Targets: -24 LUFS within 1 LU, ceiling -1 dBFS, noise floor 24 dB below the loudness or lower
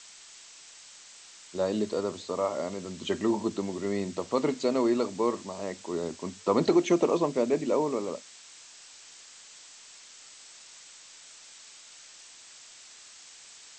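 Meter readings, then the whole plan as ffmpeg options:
noise floor -51 dBFS; noise floor target -53 dBFS; loudness -29.0 LUFS; peak level -12.0 dBFS; loudness target -24.0 LUFS
-> -af "afftdn=nr=6:nf=-51"
-af "volume=1.78"

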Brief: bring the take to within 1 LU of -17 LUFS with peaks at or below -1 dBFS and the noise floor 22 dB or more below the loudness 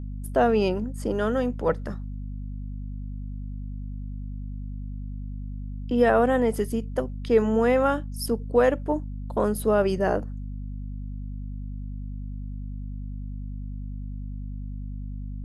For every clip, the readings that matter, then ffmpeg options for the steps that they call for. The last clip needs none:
hum 50 Hz; highest harmonic 250 Hz; hum level -31 dBFS; loudness -27.5 LUFS; peak level -8.5 dBFS; loudness target -17.0 LUFS
-> -af "bandreject=f=50:t=h:w=4,bandreject=f=100:t=h:w=4,bandreject=f=150:t=h:w=4,bandreject=f=200:t=h:w=4,bandreject=f=250:t=h:w=4"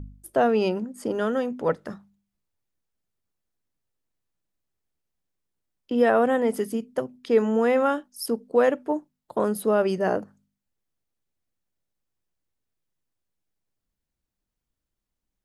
hum not found; loudness -24.5 LUFS; peak level -9.0 dBFS; loudness target -17.0 LUFS
-> -af "volume=2.37"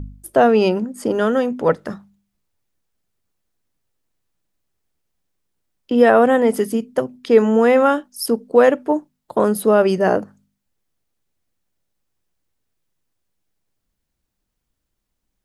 loudness -17.0 LUFS; peak level -1.5 dBFS; noise floor -77 dBFS

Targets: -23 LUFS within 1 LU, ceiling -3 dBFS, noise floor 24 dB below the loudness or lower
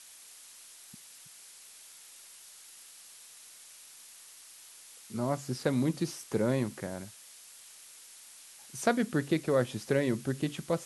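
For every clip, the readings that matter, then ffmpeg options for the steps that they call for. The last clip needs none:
noise floor -53 dBFS; noise floor target -56 dBFS; loudness -31.5 LUFS; peak level -13.5 dBFS; loudness target -23.0 LUFS
-> -af "afftdn=nr=6:nf=-53"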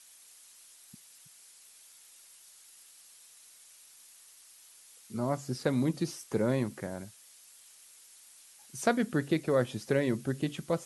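noise floor -57 dBFS; loudness -31.5 LUFS; peak level -13.5 dBFS; loudness target -23.0 LUFS
-> -af "volume=2.66"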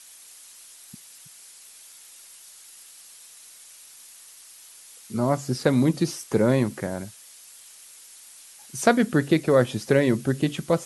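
loudness -23.0 LUFS; peak level -5.0 dBFS; noise floor -48 dBFS

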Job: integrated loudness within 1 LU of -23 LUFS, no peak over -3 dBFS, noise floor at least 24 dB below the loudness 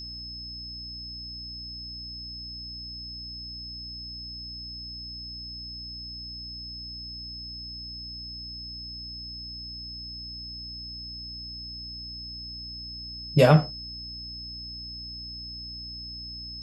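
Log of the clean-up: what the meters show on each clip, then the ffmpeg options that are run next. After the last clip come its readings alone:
hum 60 Hz; highest harmonic 300 Hz; hum level -43 dBFS; steady tone 5.2 kHz; tone level -37 dBFS; loudness -32.5 LUFS; peak level -5.0 dBFS; loudness target -23.0 LUFS
-> -af "bandreject=f=60:t=h:w=6,bandreject=f=120:t=h:w=6,bandreject=f=180:t=h:w=6,bandreject=f=240:t=h:w=6,bandreject=f=300:t=h:w=6"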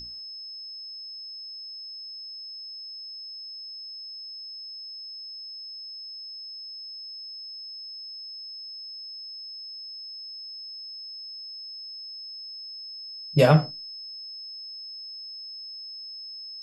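hum not found; steady tone 5.2 kHz; tone level -37 dBFS
-> -af "bandreject=f=5200:w=30"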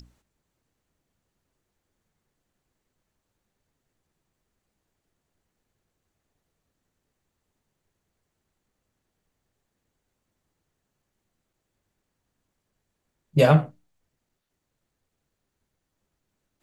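steady tone not found; loudness -20.5 LUFS; peak level -5.0 dBFS; loudness target -23.0 LUFS
-> -af "volume=0.75"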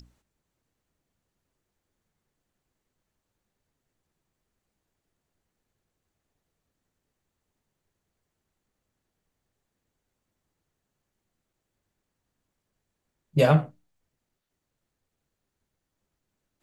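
loudness -23.0 LUFS; peak level -7.5 dBFS; noise floor -83 dBFS

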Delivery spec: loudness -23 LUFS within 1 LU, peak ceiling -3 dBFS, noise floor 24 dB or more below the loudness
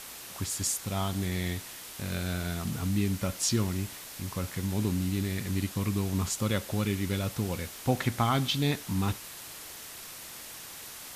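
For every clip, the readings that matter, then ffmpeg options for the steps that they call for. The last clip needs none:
noise floor -44 dBFS; noise floor target -56 dBFS; loudness -31.5 LUFS; peak level -12.5 dBFS; loudness target -23.0 LUFS
-> -af "afftdn=nr=12:nf=-44"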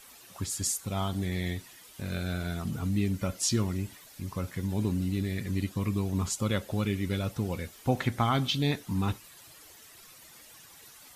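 noise floor -53 dBFS; noise floor target -55 dBFS
-> -af "afftdn=nr=6:nf=-53"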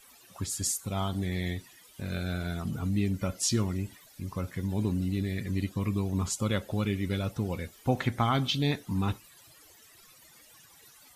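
noise floor -57 dBFS; loudness -31.0 LUFS; peak level -13.0 dBFS; loudness target -23.0 LUFS
-> -af "volume=2.51"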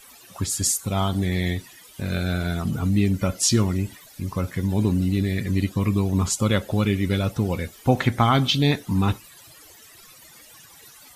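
loudness -23.0 LUFS; peak level -5.0 dBFS; noise floor -49 dBFS

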